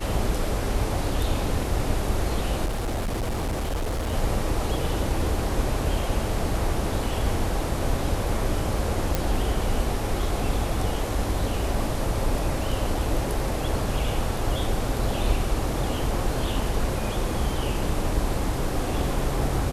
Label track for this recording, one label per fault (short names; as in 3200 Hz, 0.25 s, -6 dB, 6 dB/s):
2.650000	4.140000	clipped -23.5 dBFS
9.150000	9.150000	pop